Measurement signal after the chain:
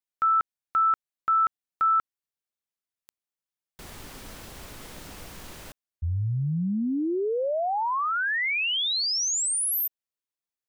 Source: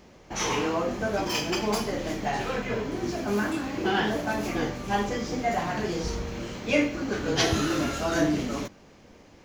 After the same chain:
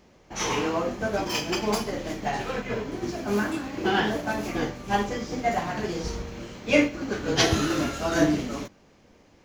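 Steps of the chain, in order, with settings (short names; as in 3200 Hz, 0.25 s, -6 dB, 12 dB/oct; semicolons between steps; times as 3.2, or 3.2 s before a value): upward expander 1.5:1, over -36 dBFS; gain +4 dB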